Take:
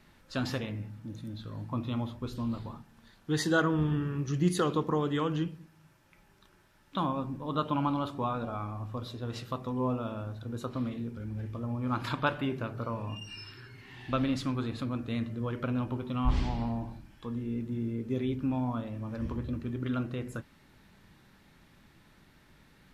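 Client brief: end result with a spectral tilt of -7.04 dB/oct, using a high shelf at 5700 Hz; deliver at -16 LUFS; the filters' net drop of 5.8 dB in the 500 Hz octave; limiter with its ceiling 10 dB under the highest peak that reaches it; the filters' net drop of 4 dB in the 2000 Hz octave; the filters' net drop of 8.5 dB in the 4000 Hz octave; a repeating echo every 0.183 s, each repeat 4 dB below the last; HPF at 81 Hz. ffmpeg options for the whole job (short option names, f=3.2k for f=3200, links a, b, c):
-af "highpass=81,equalizer=f=500:t=o:g=-7,equalizer=f=2k:t=o:g=-3.5,equalizer=f=4k:t=o:g=-6.5,highshelf=f=5.7k:g=-8.5,alimiter=level_in=2.5dB:limit=-24dB:level=0:latency=1,volume=-2.5dB,aecho=1:1:183|366|549|732|915|1098|1281|1464|1647:0.631|0.398|0.25|0.158|0.0994|0.0626|0.0394|0.0249|0.0157,volume=19dB"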